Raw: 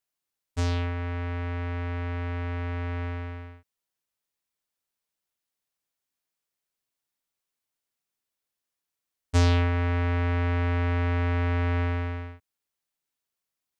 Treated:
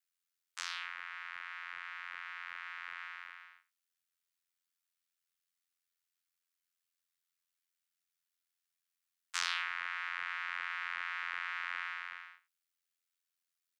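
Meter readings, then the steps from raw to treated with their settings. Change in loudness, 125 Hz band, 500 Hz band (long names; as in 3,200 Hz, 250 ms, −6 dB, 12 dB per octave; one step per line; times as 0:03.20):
−11.5 dB, below −40 dB, below −40 dB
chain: Butterworth high-pass 1,200 Hz 36 dB per octave
ring modulation 43 Hz
on a send: single-tap delay 86 ms −16.5 dB
on the sum: level +1 dB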